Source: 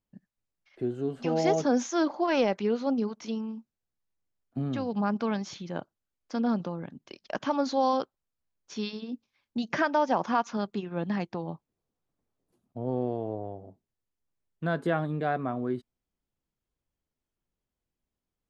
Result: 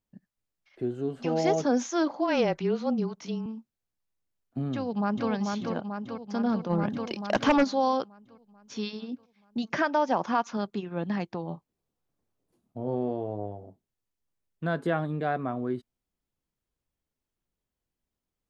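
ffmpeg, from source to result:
-filter_complex "[0:a]asettb=1/sr,asplit=3[a][b][c];[a]atrim=end=2.114[d];[b]atrim=start=2.11:end=3.46,asetpts=PTS-STARTPTS,afade=t=in:d=0.004:c=qsin,afade=t=out:st=1.346:d=0.004:c=qsin,afreqshift=-23[e];[c]atrim=start=3.456[f];[d][e]acrossfade=d=0.004:c1=hsin:c2=qsin[g];[g][f]acrossfade=d=0.004:c1=qsin:c2=hsin,asplit=2[h][i];[i]afade=t=in:st=4.73:d=0.01,afade=t=out:st=5.29:d=0.01,aecho=0:1:440|880|1320|1760|2200|2640|3080|3520|3960|4400:0.668344|0.434424|0.282375|0.183544|0.119304|0.0775473|0.0504058|0.0327637|0.0212964|0.0138427[j];[h][j]amix=inputs=2:normalize=0,asplit=3[k][l][m];[k]afade=t=out:st=6.69:d=0.02[n];[l]aeval=exprs='0.168*sin(PI/2*2*val(0)/0.168)':c=same,afade=t=in:st=6.69:d=0.02,afade=t=out:st=7.63:d=0.02[o];[m]afade=t=in:st=7.63:d=0.02[p];[n][o][p]amix=inputs=3:normalize=0,asettb=1/sr,asplit=3[q][r][s];[q]atrim=end=11.474[t];[r]atrim=start=11.47:end=13.64,asetpts=PTS-STARTPTS,afade=t=in:d=0.004:c=qsin,afade=t=out:st=2.166:d=0.004:c=qsin,asplit=2[u][v];[v]adelay=29,volume=-8dB[w];[u][w]amix=inputs=2:normalize=0,atrim=end_sample=95697[x];[s]atrim=start=13.636[y];[t][x]acrossfade=d=0.004:c1=hsin:c2=qsin[z];[z][y]acrossfade=d=0.004:c1=qsin:c2=hsin"

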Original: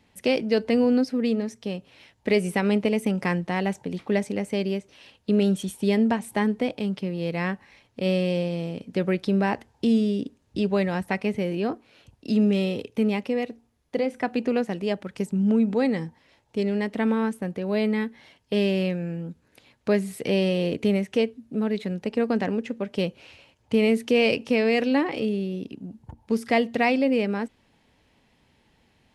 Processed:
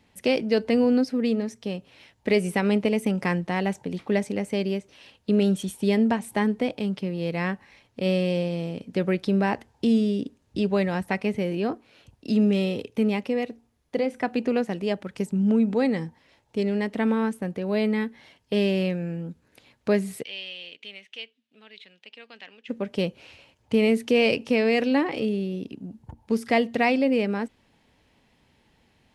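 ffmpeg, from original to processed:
-filter_complex "[0:a]asplit=3[a][b][c];[a]afade=t=out:st=20.22:d=0.02[d];[b]bandpass=f=3.1k:t=q:w=2.9,afade=t=in:st=20.22:d=0.02,afade=t=out:st=22.68:d=0.02[e];[c]afade=t=in:st=22.68:d=0.02[f];[d][e][f]amix=inputs=3:normalize=0"

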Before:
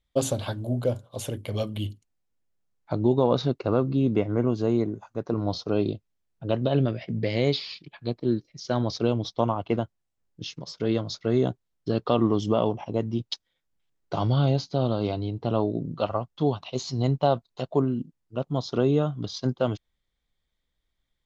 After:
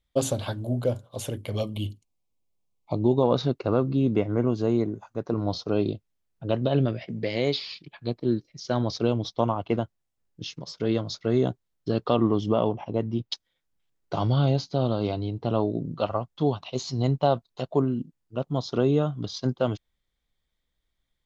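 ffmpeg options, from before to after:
-filter_complex "[0:a]asettb=1/sr,asplit=3[a][b][c];[a]atrim=end=1.614[d];[b]atrim=start=1.61:end=3.23,asetpts=PTS-STARTPTS,afade=t=in:d=0.004:c=qsin,afade=t=out:st=1.616:d=0.004:c=qsin,asuperstop=centerf=1600:order=8:qfactor=1.7[e];[c]atrim=start=3.226[f];[d][e]acrossfade=d=0.004:c1=hsin:c2=qsin[g];[g][f]acrossfade=d=0.004:c1=qsin:c2=hsin,asettb=1/sr,asplit=3[h][i][j];[h]atrim=end=7.064[k];[i]atrim=start=7.06:end=7.61,asetpts=PTS-STARTPTS,afade=t=in:d=0.004:c=qsin,afade=t=out:st=0.546:d=0.004:c=qsin,highpass=f=210:p=1[l];[j]atrim=start=7.606[m];[k][l]acrossfade=d=0.004:c1=hsin:c2=qsin[n];[n][m]acrossfade=d=0.004:c1=qsin:c2=hsin,asettb=1/sr,asplit=3[o][p][q];[o]atrim=end=12.164[r];[p]atrim=start=12.16:end=13.32,asetpts=PTS-STARTPTS,afade=t=in:d=0.004:c=qsin,afade=t=out:st=1.156:d=0.004:c=qsin,equalizer=f=8.7k:w=0.96:g=-13[s];[q]atrim=start=13.316[t];[r][s]acrossfade=d=0.004:c1=hsin:c2=qsin[u];[u][t]acrossfade=d=0.004:c1=qsin:c2=hsin"

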